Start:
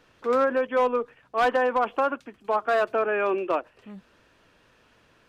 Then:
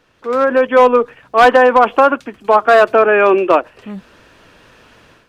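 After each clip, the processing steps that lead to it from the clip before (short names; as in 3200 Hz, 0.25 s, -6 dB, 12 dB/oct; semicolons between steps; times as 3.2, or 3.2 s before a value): AGC gain up to 12 dB; gain +2.5 dB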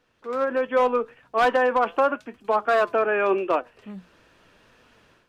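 flange 0.83 Hz, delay 3.9 ms, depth 2.4 ms, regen +85%; gain -6.5 dB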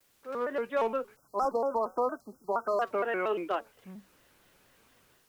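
requantised 10-bit, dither triangular; spectral delete 1.15–2.81, 1400–4500 Hz; shaped vibrato square 4.3 Hz, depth 160 cents; gain -8.5 dB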